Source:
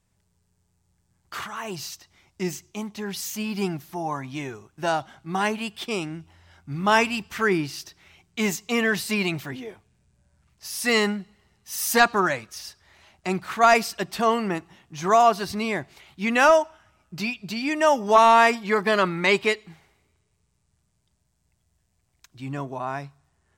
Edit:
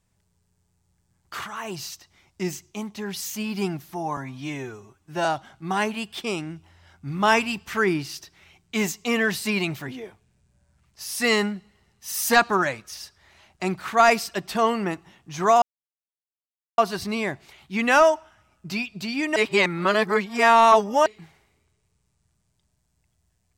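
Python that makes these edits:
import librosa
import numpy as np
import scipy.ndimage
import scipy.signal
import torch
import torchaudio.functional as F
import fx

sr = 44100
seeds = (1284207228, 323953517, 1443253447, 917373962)

y = fx.edit(x, sr, fx.stretch_span(start_s=4.17, length_s=0.72, factor=1.5),
    fx.insert_silence(at_s=15.26, length_s=1.16),
    fx.reverse_span(start_s=17.84, length_s=1.7), tone=tone)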